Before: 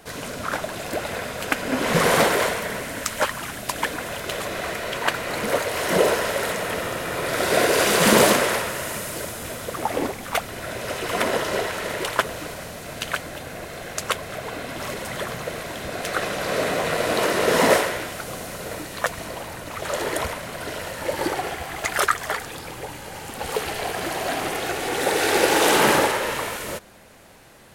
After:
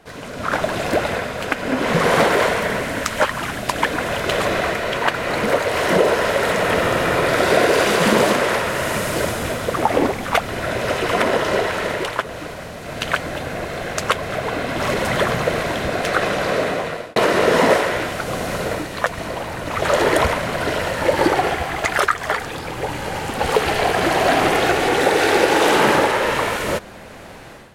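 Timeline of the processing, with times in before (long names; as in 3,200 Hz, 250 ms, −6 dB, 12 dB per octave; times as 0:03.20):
0:16.27–0:17.16: fade out
whole clip: downward compressor 2 to 1, threshold −22 dBFS; low-pass filter 3,300 Hz 6 dB per octave; automatic gain control gain up to 13.5 dB; level −1 dB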